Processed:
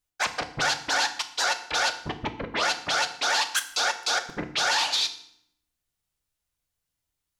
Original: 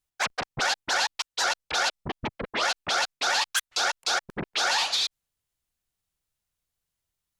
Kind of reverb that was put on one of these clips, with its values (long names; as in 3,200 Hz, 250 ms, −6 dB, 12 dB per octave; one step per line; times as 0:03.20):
feedback delay network reverb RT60 0.67 s, low-frequency decay 1.55×, high-frequency decay 0.9×, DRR 7 dB